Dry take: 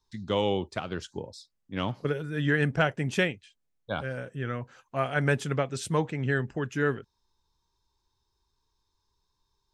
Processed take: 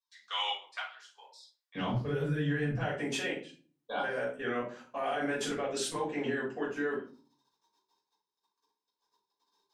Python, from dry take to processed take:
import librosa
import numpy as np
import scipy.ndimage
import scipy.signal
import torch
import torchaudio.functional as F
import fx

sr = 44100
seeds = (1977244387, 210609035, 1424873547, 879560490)

y = fx.highpass(x, sr, hz=fx.steps((0.0, 1100.0), (1.75, 120.0), (2.79, 270.0)), slope=24)
y = fx.level_steps(y, sr, step_db=20)
y = fx.room_shoebox(y, sr, seeds[0], volume_m3=280.0, walls='furnished', distance_m=5.7)
y = F.gain(torch.from_numpy(y), -3.0).numpy()